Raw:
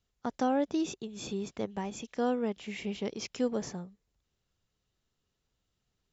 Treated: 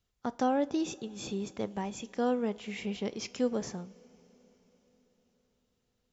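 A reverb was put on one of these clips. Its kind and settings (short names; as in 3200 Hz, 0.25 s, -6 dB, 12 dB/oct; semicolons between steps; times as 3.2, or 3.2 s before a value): two-slope reverb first 0.31 s, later 4.9 s, from -18 dB, DRR 14.5 dB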